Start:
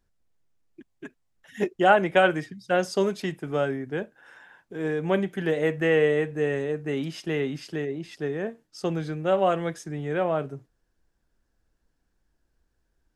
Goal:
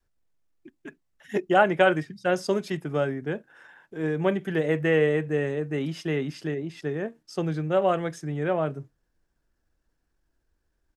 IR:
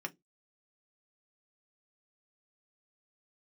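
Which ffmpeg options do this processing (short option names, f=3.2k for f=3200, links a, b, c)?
-filter_complex "[0:a]adynamicequalizer=threshold=0.00891:dfrequency=170:dqfactor=1:tfrequency=170:tqfactor=1:attack=5:release=100:ratio=0.375:range=2:mode=boostabove:tftype=bell,asplit=2[a][b];[1:a]atrim=start_sample=2205,highshelf=f=6.6k:g=-10[c];[b][c]afir=irnorm=-1:irlink=0,volume=-13dB[d];[a][d]amix=inputs=2:normalize=0,atempo=1.2,volume=-2dB"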